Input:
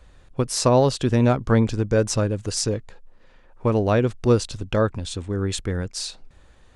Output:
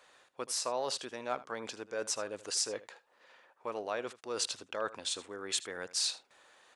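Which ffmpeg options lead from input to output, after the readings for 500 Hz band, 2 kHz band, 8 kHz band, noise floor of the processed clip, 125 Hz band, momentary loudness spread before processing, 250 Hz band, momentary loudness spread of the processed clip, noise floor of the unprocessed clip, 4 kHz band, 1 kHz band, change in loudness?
−16.5 dB, −9.5 dB, −5.5 dB, −70 dBFS, −38.0 dB, 10 LU, −25.5 dB, 10 LU, −53 dBFS, −4.5 dB, −12.0 dB, −14.0 dB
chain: -af "areverse,acompressor=threshold=-27dB:ratio=6,areverse,highpass=640,aecho=1:1:78:0.133"

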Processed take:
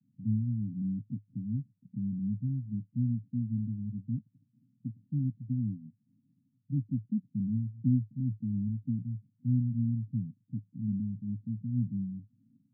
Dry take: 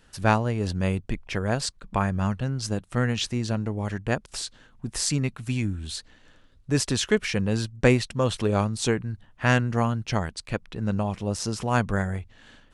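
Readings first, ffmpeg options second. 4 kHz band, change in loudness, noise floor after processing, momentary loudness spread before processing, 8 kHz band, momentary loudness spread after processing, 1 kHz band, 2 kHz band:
below −40 dB, −7.5 dB, −75 dBFS, 9 LU, below −40 dB, 9 LU, below −40 dB, below −40 dB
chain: -af "asuperpass=centerf=170:order=20:qfactor=0.98,volume=-4dB"

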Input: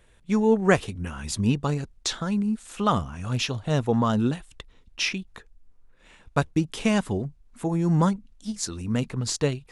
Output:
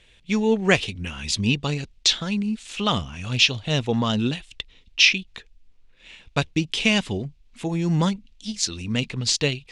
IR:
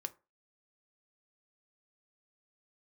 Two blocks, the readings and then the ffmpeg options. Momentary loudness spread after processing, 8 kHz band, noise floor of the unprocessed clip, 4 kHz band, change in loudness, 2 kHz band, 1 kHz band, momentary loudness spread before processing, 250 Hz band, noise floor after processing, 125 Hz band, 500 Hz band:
13 LU, +5.0 dB, −57 dBFS, +11.5 dB, +3.0 dB, +8.0 dB, −2.0 dB, 11 LU, 0.0 dB, −56 dBFS, 0.0 dB, −0.5 dB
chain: -af "lowpass=5100,highshelf=frequency=1900:width_type=q:width=1.5:gain=10.5"

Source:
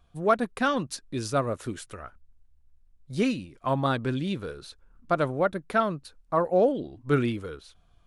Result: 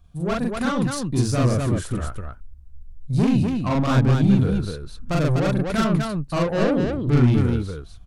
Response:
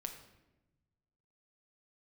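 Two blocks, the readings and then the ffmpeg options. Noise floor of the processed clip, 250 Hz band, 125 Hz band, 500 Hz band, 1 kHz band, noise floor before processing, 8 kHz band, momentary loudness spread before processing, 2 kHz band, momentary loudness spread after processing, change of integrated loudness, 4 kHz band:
−43 dBFS, +9.5 dB, +14.0 dB, +1.5 dB, −0.5 dB, −62 dBFS, +7.0 dB, 15 LU, +2.0 dB, 11 LU, +6.0 dB, +5.0 dB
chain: -filter_complex "[0:a]acrossover=split=2300[link_01][link_02];[link_01]dynaudnorm=framelen=560:gausssize=3:maxgain=7dB[link_03];[link_03][link_02]amix=inputs=2:normalize=0,asoftclip=type=tanh:threshold=-21dB,bass=frequency=250:gain=12,treble=frequency=4000:gain=6,aecho=1:1:40.82|247.8:1|0.708,volume=-2.5dB"

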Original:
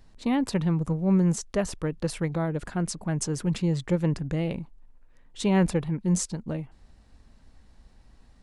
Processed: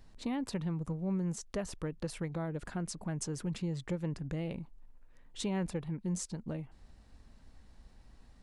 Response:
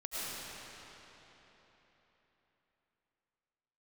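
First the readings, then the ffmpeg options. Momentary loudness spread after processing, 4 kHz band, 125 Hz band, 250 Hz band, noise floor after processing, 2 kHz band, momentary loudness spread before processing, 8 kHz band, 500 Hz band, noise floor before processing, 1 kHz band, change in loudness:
6 LU, −8.0 dB, −10.5 dB, −10.5 dB, −60 dBFS, −10.0 dB, 9 LU, −9.0 dB, −10.5 dB, −57 dBFS, −10.5 dB, −10.5 dB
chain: -af "acompressor=threshold=-36dB:ratio=2,volume=-2.5dB"

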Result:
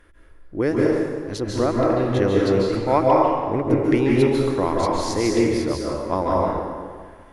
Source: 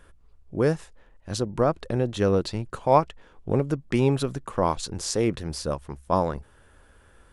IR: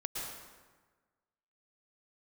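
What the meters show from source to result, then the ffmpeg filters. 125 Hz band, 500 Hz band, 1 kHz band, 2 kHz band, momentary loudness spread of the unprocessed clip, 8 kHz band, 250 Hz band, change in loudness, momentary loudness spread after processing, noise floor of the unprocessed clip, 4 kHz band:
+2.0 dB, +6.0 dB, +5.0 dB, +7.0 dB, 12 LU, 0.0 dB, +7.5 dB, +5.0 dB, 10 LU, −56 dBFS, +2.5 dB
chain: -filter_complex "[0:a]equalizer=frequency=160:width_type=o:width=0.33:gain=-8,equalizer=frequency=315:width_type=o:width=0.33:gain=9,equalizer=frequency=2000:width_type=o:width=0.33:gain=10,equalizer=frequency=8000:width_type=o:width=0.33:gain=-8[link_01];[1:a]atrim=start_sample=2205,asetrate=34839,aresample=44100[link_02];[link_01][link_02]afir=irnorm=-1:irlink=0"

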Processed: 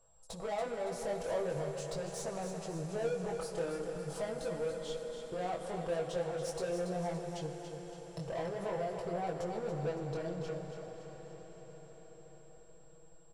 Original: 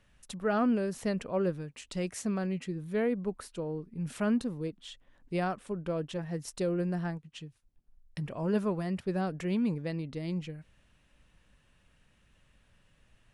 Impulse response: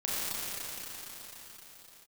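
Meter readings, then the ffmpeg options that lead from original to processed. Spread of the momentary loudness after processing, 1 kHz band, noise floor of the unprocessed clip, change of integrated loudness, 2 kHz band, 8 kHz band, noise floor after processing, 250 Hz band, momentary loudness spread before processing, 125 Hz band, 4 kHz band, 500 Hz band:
14 LU, −1.5 dB, −67 dBFS, −5.0 dB, −5.5 dB, 0.0 dB, −56 dBFS, −11.5 dB, 11 LU, −6.5 dB, −2.0 dB, −1.0 dB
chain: -filter_complex "[0:a]agate=range=-10dB:threshold=-52dB:ratio=16:detection=peak,acontrast=34,lowshelf=frequency=69:gain=10.5,aecho=1:1:6.1:0.56,alimiter=limit=-21dB:level=0:latency=1,acompressor=threshold=-29dB:ratio=6,firequalizer=gain_entry='entry(140,0);entry(220,-13);entry(490,7);entry(760,6);entry(1900,-24);entry(4600,-6)':delay=0.05:min_phase=1,asplit=2[link_01][link_02];[link_02]highpass=frequency=720:poles=1,volume=15dB,asoftclip=type=tanh:threshold=-29.5dB[link_03];[link_01][link_03]amix=inputs=2:normalize=0,lowpass=frequency=5100:poles=1,volume=-6dB,flanger=delay=17:depth=6.5:speed=0.43,aeval=exprs='val(0)+0.000355*sin(2*PI*7600*n/s)':channel_layout=same,aecho=1:1:282|564|846|1128|1410|1692:0.398|0.191|0.0917|0.044|0.0211|0.0101,asplit=2[link_04][link_05];[1:a]atrim=start_sample=2205,asetrate=26460,aresample=44100[link_06];[link_05][link_06]afir=irnorm=-1:irlink=0,volume=-18dB[link_07];[link_04][link_07]amix=inputs=2:normalize=0,volume=-2dB"

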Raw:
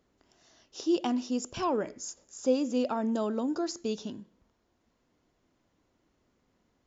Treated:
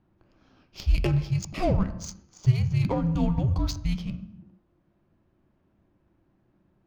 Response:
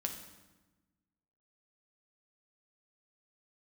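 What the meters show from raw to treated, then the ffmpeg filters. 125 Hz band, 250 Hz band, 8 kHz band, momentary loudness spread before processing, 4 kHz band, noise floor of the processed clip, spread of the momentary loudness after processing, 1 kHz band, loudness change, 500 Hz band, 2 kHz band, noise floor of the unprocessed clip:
+26.5 dB, +0.5 dB, can't be measured, 13 LU, +1.0 dB, −69 dBFS, 13 LU, −1.5 dB, +4.5 dB, −3.0 dB, +5.0 dB, −74 dBFS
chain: -filter_complex "[0:a]asplit=2[link_01][link_02];[1:a]atrim=start_sample=2205,afade=type=out:start_time=0.41:duration=0.01,atrim=end_sample=18522[link_03];[link_02][link_03]afir=irnorm=-1:irlink=0,volume=0.5dB[link_04];[link_01][link_04]amix=inputs=2:normalize=0,afreqshift=-390,adynamicsmooth=sensitivity=6:basefreq=1900"

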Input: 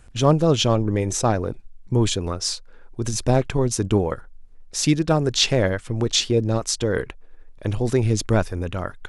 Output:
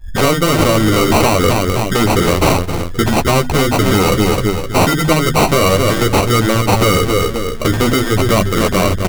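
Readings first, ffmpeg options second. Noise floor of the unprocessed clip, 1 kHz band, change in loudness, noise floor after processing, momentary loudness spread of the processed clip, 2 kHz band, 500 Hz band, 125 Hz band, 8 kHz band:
−45 dBFS, +13.5 dB, +8.5 dB, −21 dBFS, 4 LU, +14.0 dB, +8.5 dB, +7.0 dB, +5.5 dB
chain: -filter_complex "[0:a]bandreject=frequency=50:width_type=h:width=6,bandreject=frequency=100:width_type=h:width=6,bandreject=frequency=150:width_type=h:width=6,bandreject=frequency=200:width_type=h:width=6,bandreject=frequency=250:width_type=h:width=6,afftdn=noise_reduction=27:noise_floor=-35,bandreject=frequency=6300:width=13,asplit=2[link_01][link_02];[link_02]adelay=259,lowpass=frequency=3000:poles=1,volume=-13.5dB,asplit=2[link_03][link_04];[link_04]adelay=259,lowpass=frequency=3000:poles=1,volume=0.38,asplit=2[link_05][link_06];[link_06]adelay=259,lowpass=frequency=3000:poles=1,volume=0.38,asplit=2[link_07][link_08];[link_08]adelay=259,lowpass=frequency=3000:poles=1,volume=0.38[link_09];[link_01][link_03][link_05][link_07][link_09]amix=inputs=5:normalize=0,adynamicequalizer=threshold=0.00891:dfrequency=1400:dqfactor=1.9:tfrequency=1400:tqfactor=1.9:attack=5:release=100:ratio=0.375:range=1.5:mode=cutabove:tftype=bell,acompressor=threshold=-27dB:ratio=20,acrusher=samples=26:mix=1:aa=0.000001,apsyclip=30.5dB,flanger=delay=9.3:depth=4.1:regen=-18:speed=0.46:shape=triangular,afftfilt=real='re*lt(hypot(re,im),3.55)':imag='im*lt(hypot(re,im),3.55)':win_size=1024:overlap=0.75,volume=-3dB"

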